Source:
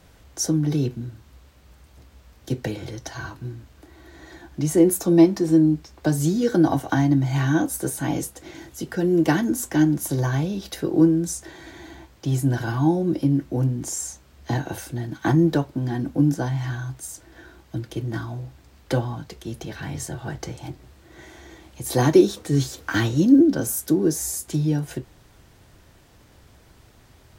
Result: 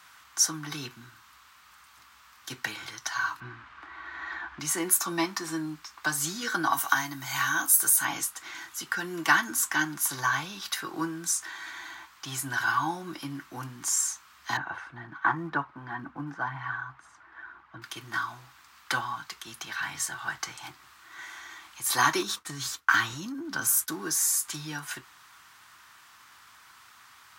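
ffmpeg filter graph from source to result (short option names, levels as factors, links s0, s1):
-filter_complex "[0:a]asettb=1/sr,asplit=3[s0][s1][s2];[s0]atrim=end=3.404[s3];[s1]atrim=start=3.4:end=4.6,asetpts=PTS-STARTPTS,afade=t=in:d=0.004:c=qsin,afade=t=out:st=1.196:d=0.004:c=qsin,lowpass=2300,acontrast=85,asubboost=boost=9:cutoff=68[s4];[s2]atrim=start=4.596[s5];[s3][s4]acrossfade=d=0.004:c1=hsin:c2=qsin[s6];[s6][s5]acrossfade=d=0.004:c1=qsin:c2=hsin,asettb=1/sr,asplit=3[s7][s8][s9];[s7]atrim=end=6.734[s10];[s8]atrim=start=6.73:end=8.05,asetpts=PTS-STARTPTS,afade=t=in:d=0.004:c=qsin,afade=t=out:st=1.316:d=0.004:c=qsin,aemphasis=mode=production:type=50fm,acompressor=threshold=0.0501:ratio=1.5:attack=3.2:release=140:knee=1:detection=peak[s11];[s9]atrim=start=8.046[s12];[s10][s11]acrossfade=d=0.004:c1=hsin:c2=qsin[s13];[s13][s12]acrossfade=d=0.004:c1=qsin:c2=hsin,asettb=1/sr,asplit=3[s14][s15][s16];[s14]atrim=end=14.574[s17];[s15]atrim=start=14.57:end=17.82,asetpts=PTS-STARTPTS,afade=t=in:d=0.004:c=qsin,afade=t=out:st=3.246:d=0.004:c=qsin,lowpass=1500,aphaser=in_gain=1:out_gain=1:delay=2.5:decay=0.3:speed=2:type=triangular[s18];[s16]atrim=start=17.816[s19];[s17][s18]acrossfade=d=0.004:c1=hsin:c2=qsin[s20];[s20][s19]acrossfade=d=0.004:c1=qsin:c2=hsin,asettb=1/sr,asplit=3[s21][s22][s23];[s21]atrim=end=22.224[s24];[s22]atrim=start=22.22:end=23.92,asetpts=PTS-STARTPTS,afade=t=in:d=0.004:c=qsin,afade=t=out:st=1.696:d=0.004:c=qsin,agate=range=0.0224:threshold=0.02:ratio=3:release=100:detection=peak,lowshelf=f=190:g=10,acompressor=threshold=0.126:ratio=5:attack=3.2:release=140:knee=1:detection=peak[s25];[s23]atrim=start=23.916[s26];[s24][s25]acrossfade=d=0.004:c1=hsin:c2=qsin[s27];[s27][s26]acrossfade=d=0.004:c1=qsin:c2=hsin,highpass=f=360:p=1,lowshelf=f=780:t=q:w=3:g=-13.5,volume=1.41"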